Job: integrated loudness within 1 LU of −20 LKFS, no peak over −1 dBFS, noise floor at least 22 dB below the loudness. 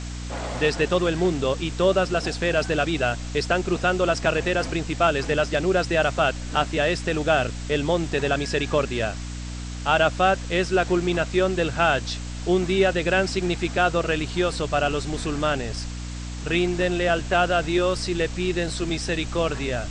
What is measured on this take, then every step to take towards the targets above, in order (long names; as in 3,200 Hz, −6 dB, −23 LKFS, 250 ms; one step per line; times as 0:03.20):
mains hum 60 Hz; hum harmonics up to 300 Hz; level of the hum −30 dBFS; background noise floor −33 dBFS; target noise floor −46 dBFS; integrated loudness −23.5 LKFS; sample peak −6.0 dBFS; target loudness −20.0 LKFS
→ mains-hum notches 60/120/180/240/300 Hz
noise reduction from a noise print 13 dB
level +3.5 dB